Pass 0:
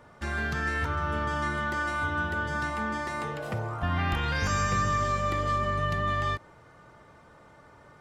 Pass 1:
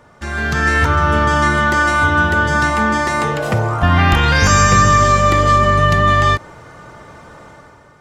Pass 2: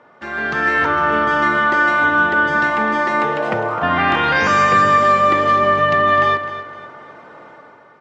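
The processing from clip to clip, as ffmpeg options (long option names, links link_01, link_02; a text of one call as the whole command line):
ffmpeg -i in.wav -af "equalizer=frequency=6600:width_type=o:width=0.66:gain=4,dynaudnorm=framelen=110:gausssize=9:maxgain=9.5dB,volume=6dB" out.wav
ffmpeg -i in.wav -af "highpass=270,lowpass=2800,aecho=1:1:256|512|768:0.251|0.0854|0.029" out.wav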